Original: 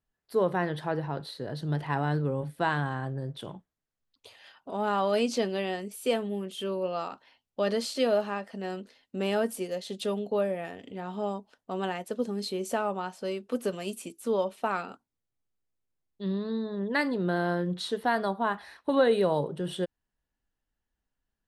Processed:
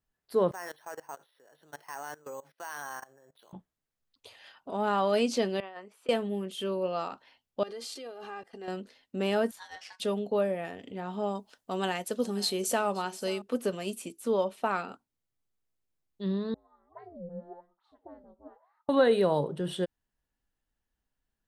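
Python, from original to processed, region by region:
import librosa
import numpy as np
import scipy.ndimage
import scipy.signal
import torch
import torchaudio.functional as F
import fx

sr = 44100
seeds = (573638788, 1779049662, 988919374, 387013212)

y = fx.chain(x, sr, fx.highpass(hz=720.0, slope=12),
    fx.level_steps(step_db=20),
    fx.resample_bad(factor=6, down='filtered', up='hold'), at=(0.51, 3.53))
y = fx.chain(y, sr, fx.bandpass_q(hz=1100.0, q=1.8),
    fx.over_compress(threshold_db=-43.0, ratio=-0.5), at=(5.6, 6.09))
y = fx.chain(y, sr, fx.level_steps(step_db=21),
    fx.comb(ms=2.5, depth=0.67), at=(7.63, 8.68))
y = fx.chain(y, sr, fx.bandpass_q(hz=2500.0, q=0.68),
    fx.ring_mod(carrier_hz=1300.0), at=(9.51, 10.0))
y = fx.chain(y, sr, fx.high_shelf(hz=3000.0, db=10.0),
    fx.echo_single(ms=526, db=-19.5), at=(11.35, 13.42))
y = fx.chain(y, sr, fx.wah_lfo(hz=1.0, low_hz=330.0, high_hz=1100.0, q=21.0),
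    fx.ring_mod(carrier_hz=170.0),
    fx.dispersion(late='highs', ms=44.0, hz=1800.0), at=(16.54, 18.89))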